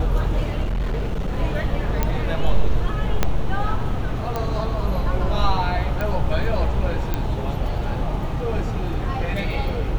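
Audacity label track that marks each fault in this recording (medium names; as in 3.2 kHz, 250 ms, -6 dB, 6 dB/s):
0.640000	1.380000	clipped -19.5 dBFS
2.030000	2.030000	pop -7 dBFS
3.230000	3.230000	pop -4 dBFS
4.360000	4.360000	pop -12 dBFS
6.010000	6.010000	pop -13 dBFS
7.140000	7.140000	pop -10 dBFS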